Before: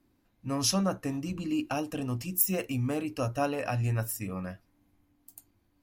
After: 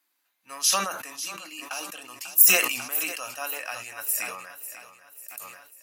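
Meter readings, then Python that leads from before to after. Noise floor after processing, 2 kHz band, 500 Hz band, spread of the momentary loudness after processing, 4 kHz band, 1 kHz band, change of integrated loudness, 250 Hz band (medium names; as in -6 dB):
-75 dBFS, +12.0 dB, -4.0 dB, 24 LU, +8.0 dB, +3.0 dB, +7.5 dB, -14.0 dB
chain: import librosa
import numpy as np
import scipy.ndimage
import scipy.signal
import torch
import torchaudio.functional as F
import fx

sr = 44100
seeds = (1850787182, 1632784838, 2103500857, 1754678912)

y = scipy.signal.sosfilt(scipy.signal.butter(2, 1300.0, 'highpass', fs=sr, output='sos'), x)
y = fx.high_shelf(y, sr, hz=7500.0, db=7.5)
y = fx.notch(y, sr, hz=5400.0, q=21.0)
y = fx.echo_feedback(y, sr, ms=544, feedback_pct=48, wet_db=-12.5)
y = fx.sustainer(y, sr, db_per_s=57.0)
y = y * 10.0 ** (3.5 / 20.0)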